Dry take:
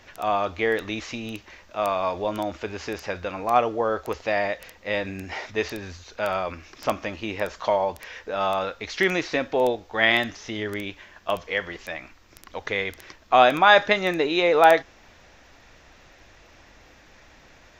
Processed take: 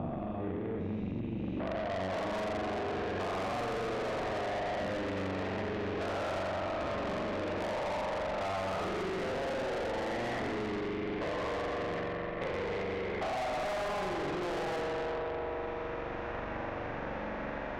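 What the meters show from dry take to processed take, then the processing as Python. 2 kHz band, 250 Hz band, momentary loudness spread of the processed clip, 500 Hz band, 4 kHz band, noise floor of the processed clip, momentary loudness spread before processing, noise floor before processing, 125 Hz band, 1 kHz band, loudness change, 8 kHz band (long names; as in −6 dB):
−13.5 dB, −5.0 dB, 3 LU, −9.0 dB, −13.5 dB, −38 dBFS, 17 LU, −53 dBFS, −1.0 dB, −12.0 dB, −11.5 dB, −9.0 dB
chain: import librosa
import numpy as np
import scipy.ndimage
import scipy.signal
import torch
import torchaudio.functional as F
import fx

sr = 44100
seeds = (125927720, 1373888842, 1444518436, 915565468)

p1 = fx.spec_steps(x, sr, hold_ms=400)
p2 = fx.over_compress(p1, sr, threshold_db=-30.0, ratio=-0.5)
p3 = p1 + F.gain(torch.from_numpy(p2), 2.0).numpy()
p4 = fx.filter_sweep_lowpass(p3, sr, from_hz=160.0, to_hz=1100.0, start_s=1.15, end_s=2.41, q=0.9)
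p5 = fx.rev_spring(p4, sr, rt60_s=2.5, pass_ms=(42,), chirp_ms=55, drr_db=-3.0)
p6 = fx.tube_stage(p5, sr, drive_db=28.0, bias=0.4)
p7 = fx.band_squash(p6, sr, depth_pct=100)
y = F.gain(torch.from_numpy(p7), -5.0).numpy()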